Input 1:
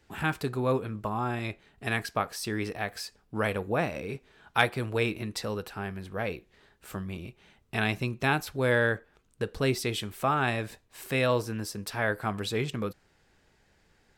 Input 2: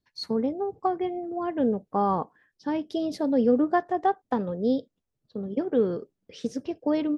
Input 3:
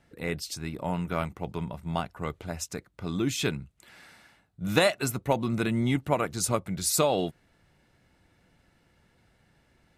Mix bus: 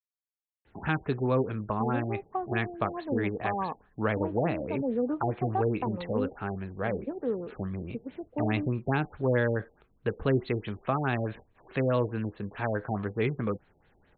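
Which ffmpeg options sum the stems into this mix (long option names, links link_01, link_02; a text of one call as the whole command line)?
ffmpeg -i stem1.wav -i stem2.wav -filter_complex "[0:a]adelay=650,volume=2dB[link_01];[1:a]lowpass=1800,adynamicequalizer=threshold=0.00891:dfrequency=980:dqfactor=2.2:tfrequency=980:tqfactor=2.2:attack=5:release=100:ratio=0.375:range=3.5:mode=boostabove:tftype=bell,adelay=1500,volume=-8dB[link_02];[link_01][link_02]amix=inputs=2:normalize=0,highshelf=frequency=5400:gain=-6.5,acrossover=split=410[link_03][link_04];[link_04]acompressor=threshold=-26dB:ratio=6[link_05];[link_03][link_05]amix=inputs=2:normalize=0,afftfilt=real='re*lt(b*sr/1024,820*pow(4500/820,0.5+0.5*sin(2*PI*4.7*pts/sr)))':imag='im*lt(b*sr/1024,820*pow(4500/820,0.5+0.5*sin(2*PI*4.7*pts/sr)))':win_size=1024:overlap=0.75" out.wav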